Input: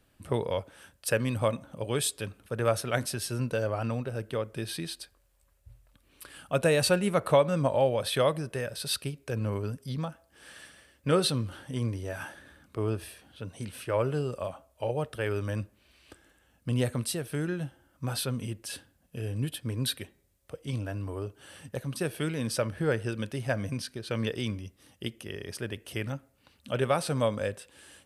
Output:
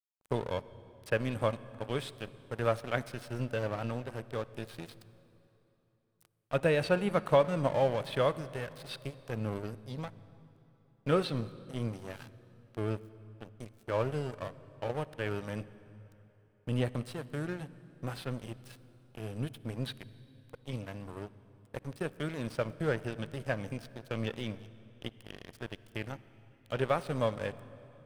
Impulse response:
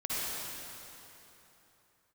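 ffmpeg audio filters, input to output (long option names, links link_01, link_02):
-filter_complex "[0:a]aeval=exprs='sgn(val(0))*max(abs(val(0))-0.015,0)':channel_layout=same,acrossover=split=3600[link_01][link_02];[link_02]acompressor=threshold=-51dB:ratio=4:attack=1:release=60[link_03];[link_01][link_03]amix=inputs=2:normalize=0,asplit=2[link_04][link_05];[1:a]atrim=start_sample=2205,lowshelf=frequency=170:gain=10.5[link_06];[link_05][link_06]afir=irnorm=-1:irlink=0,volume=-24dB[link_07];[link_04][link_07]amix=inputs=2:normalize=0,volume=-2dB"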